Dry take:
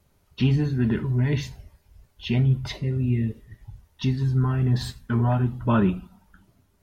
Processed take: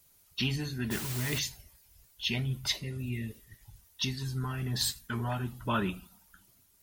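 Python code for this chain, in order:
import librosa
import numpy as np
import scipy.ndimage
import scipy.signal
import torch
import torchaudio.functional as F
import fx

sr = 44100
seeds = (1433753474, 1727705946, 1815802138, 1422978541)

y = librosa.effects.preemphasis(x, coef=0.9, zi=[0.0])
y = fx.quant_dither(y, sr, seeds[0], bits=8, dither='triangular', at=(0.9, 1.38), fade=0.02)
y = fx.hpss(y, sr, part='percussive', gain_db=4)
y = y * 10.0 ** (7.0 / 20.0)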